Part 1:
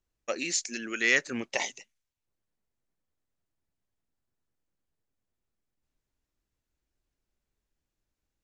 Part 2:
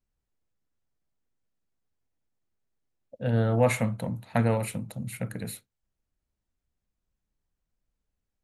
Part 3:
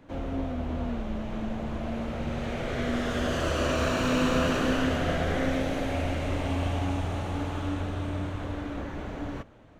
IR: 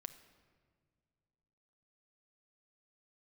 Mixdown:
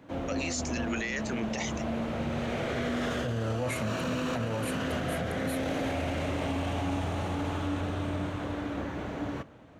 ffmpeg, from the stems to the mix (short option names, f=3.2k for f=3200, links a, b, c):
-filter_complex "[0:a]volume=1.5dB[a];[1:a]volume=-2dB,asplit=2[b][c];[2:a]highpass=84,volume=-1.5dB,asplit=2[d][e];[e]volume=-3.5dB[f];[c]apad=whole_len=431818[g];[d][g]sidechaincompress=threshold=-38dB:ratio=8:attack=16:release=368[h];[a][b]amix=inputs=2:normalize=0,alimiter=limit=-17.5dB:level=0:latency=1,volume=0dB[i];[3:a]atrim=start_sample=2205[j];[f][j]afir=irnorm=-1:irlink=0[k];[h][i][k]amix=inputs=3:normalize=0,alimiter=limit=-23dB:level=0:latency=1:release=17"